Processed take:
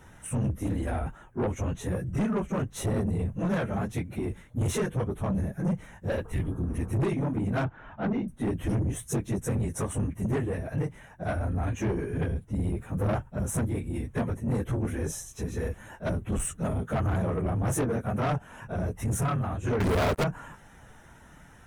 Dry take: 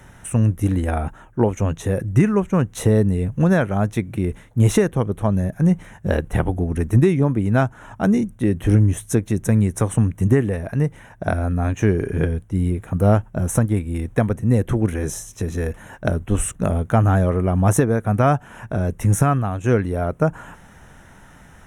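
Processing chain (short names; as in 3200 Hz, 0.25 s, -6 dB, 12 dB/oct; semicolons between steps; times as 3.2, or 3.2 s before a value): phase scrambler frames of 50 ms; 6.27–6.86 spectral repair 390–1700 Hz after; 7.64–8.28 LPF 3500 Hz 24 dB/oct; 19.8–20.24 sample leveller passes 5; soft clip -17 dBFS, distortion -9 dB; gain -6 dB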